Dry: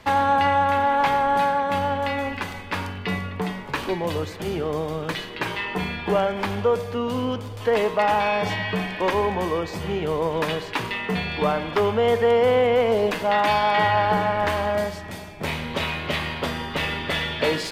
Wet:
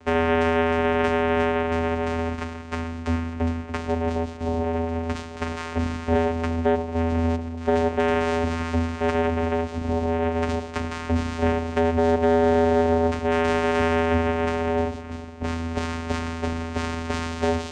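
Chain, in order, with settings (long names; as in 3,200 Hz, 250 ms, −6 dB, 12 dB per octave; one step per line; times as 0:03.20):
channel vocoder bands 4, square 82.5 Hz
soft clipping −12.5 dBFS, distortion −17 dB
level +1.5 dB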